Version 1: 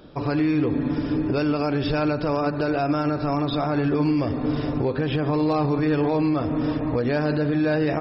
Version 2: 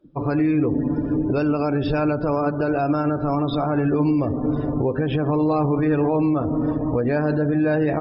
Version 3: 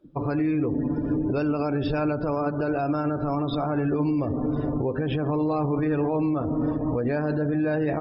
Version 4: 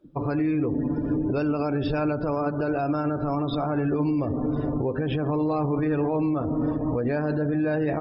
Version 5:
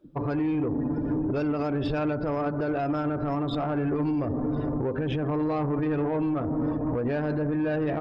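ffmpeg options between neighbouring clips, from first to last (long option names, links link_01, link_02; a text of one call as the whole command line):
ffmpeg -i in.wav -af "afftdn=noise_reduction=25:noise_floor=-35,highshelf=frequency=4500:gain=-9.5,volume=2dB" out.wav
ffmpeg -i in.wav -af "alimiter=limit=-17.5dB:level=0:latency=1:release=152" out.wav
ffmpeg -i in.wav -af "acontrast=25,volume=-5dB" out.wav
ffmpeg -i in.wav -af "asoftclip=type=tanh:threshold=-20.5dB" out.wav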